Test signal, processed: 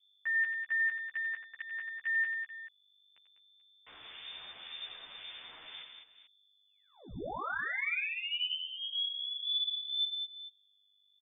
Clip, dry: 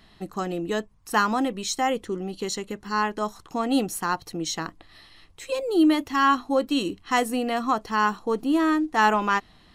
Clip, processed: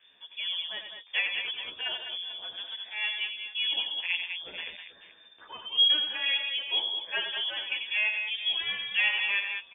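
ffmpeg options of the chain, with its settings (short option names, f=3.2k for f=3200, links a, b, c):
-filter_complex "[0:a]equalizer=f=420:w=2.7:g=-8.5,acrossover=split=1900[a][b];[a]aeval=exprs='val(0)*(1-0.7/2+0.7/2*cos(2*PI*1.9*n/s))':c=same[c];[b]aeval=exprs='val(0)*(1-0.7/2-0.7/2*cos(2*PI*1.9*n/s))':c=same[d];[c][d]amix=inputs=2:normalize=0,aecho=1:1:91|199|214|435:0.422|0.422|0.1|0.168,aeval=exprs='val(0)+0.000708*(sin(2*PI*50*n/s)+sin(2*PI*2*50*n/s)/2+sin(2*PI*3*50*n/s)/3+sin(2*PI*4*50*n/s)/4+sin(2*PI*5*50*n/s)/5)':c=same,lowpass=f=3.1k:t=q:w=0.5098,lowpass=f=3.1k:t=q:w=0.6013,lowpass=f=3.1k:t=q:w=0.9,lowpass=f=3.1k:t=q:w=2.563,afreqshift=-3600,asplit=2[e][f];[f]adelay=11,afreqshift=-0.48[g];[e][g]amix=inputs=2:normalize=1"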